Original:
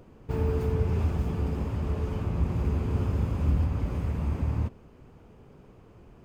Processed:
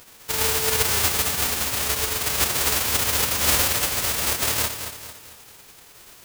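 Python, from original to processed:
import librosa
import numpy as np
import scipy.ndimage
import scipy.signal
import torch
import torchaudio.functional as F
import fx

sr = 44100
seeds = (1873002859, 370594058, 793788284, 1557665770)

y = fx.envelope_flatten(x, sr, power=0.1)
y = fx.echo_feedback(y, sr, ms=224, feedback_pct=44, wet_db=-9)
y = y * 10.0 ** (3.5 / 20.0)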